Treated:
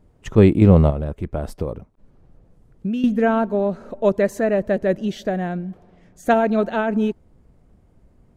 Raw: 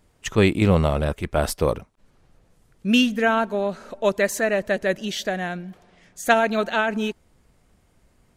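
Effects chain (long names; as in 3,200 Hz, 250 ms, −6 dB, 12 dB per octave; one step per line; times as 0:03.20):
tilt shelving filter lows +9 dB, about 1,100 Hz
0:00.90–0:03.04: downward compressor 8 to 1, threshold −20 dBFS, peak gain reduction 12.5 dB
level −2 dB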